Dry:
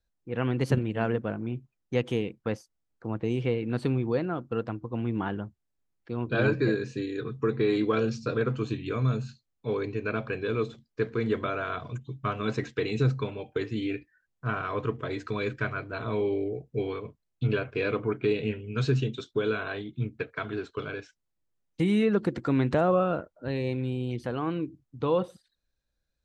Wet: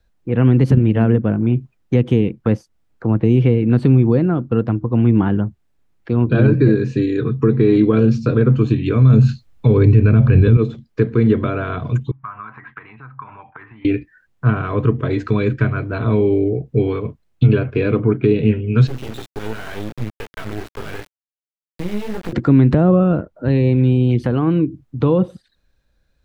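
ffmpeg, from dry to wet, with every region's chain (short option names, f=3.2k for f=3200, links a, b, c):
-filter_complex "[0:a]asettb=1/sr,asplit=3[a][b][c];[a]atrim=end=9.104[d];[b]atrim=start=9.1:end=10.57,asetpts=PTS-STARTPTS,afade=t=in:d=0.004:c=qsin,afade=t=out:st=1.466:d=0.004:c=qsin,asubboost=boost=8.5:cutoff=160,acontrast=89[e];[c]atrim=start=10.566[f];[d][e]acrossfade=d=0.004:c1=hsin:c2=qsin[g];[g][f]acrossfade=d=0.004:c1=qsin:c2=hsin,asettb=1/sr,asplit=3[h][i][j];[h]atrim=end=12.114[k];[i]atrim=start=12.11:end=13.85,asetpts=PTS-STARTPTS,afade=t=in:d=0.004:c=qsin,afade=t=out:st=1.736:d=0.004:c=qsin,acompressor=threshold=-43dB:ratio=5:attack=3.2:release=140:knee=1:detection=peak,lowpass=f=1.9k:w=0.5412,lowpass=f=1.9k:w=1.3066,lowshelf=f=690:t=q:w=3:g=-13.5[l];[j]atrim=start=13.846[m];[k][l]acrossfade=d=0.004:c1=hsin:c2=qsin[n];[n][m]acrossfade=d=0.004:c1=qsin:c2=hsin,asettb=1/sr,asplit=3[o][p][q];[o]atrim=end=18.874[r];[p]atrim=start=18.87:end=22.33,asetpts=PTS-STARTPTS,afade=t=in:d=0.004:c=qsin,afade=t=out:st=3.456:d=0.004:c=qsin,acompressor=threshold=-35dB:ratio=3:attack=3.2:release=140:knee=1:detection=peak,flanger=delay=16.5:depth=3.5:speed=2.7,acrusher=bits=5:dc=4:mix=0:aa=0.000001[s];[q]atrim=start=22.326[t];[r][s]acrossfade=d=0.004:c1=hsin:c2=qsin[u];[u][t]acrossfade=d=0.004:c1=qsin:c2=hsin,bass=f=250:g=2,treble=f=4k:g=-8,acrossover=split=350[v][w];[w]acompressor=threshold=-45dB:ratio=2.5[x];[v][x]amix=inputs=2:normalize=0,alimiter=level_in=18.5dB:limit=-1dB:release=50:level=0:latency=1,volume=-2.5dB"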